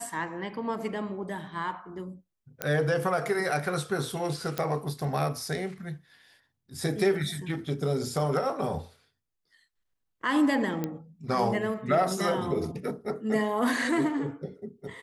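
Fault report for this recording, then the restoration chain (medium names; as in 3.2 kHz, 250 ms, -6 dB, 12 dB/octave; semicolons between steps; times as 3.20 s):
2.62 s: pop -12 dBFS
4.58 s: pop -14 dBFS
10.84 s: pop -17 dBFS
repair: de-click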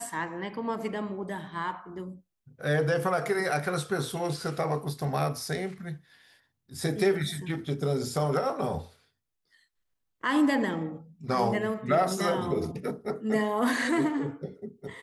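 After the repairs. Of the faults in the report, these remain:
nothing left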